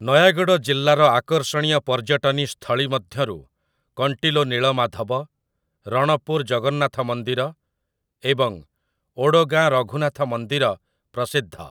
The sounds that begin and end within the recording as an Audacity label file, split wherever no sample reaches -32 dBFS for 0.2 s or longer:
3.980000	5.230000	sound
5.870000	7.500000	sound
8.240000	8.590000	sound
9.180000	10.740000	sound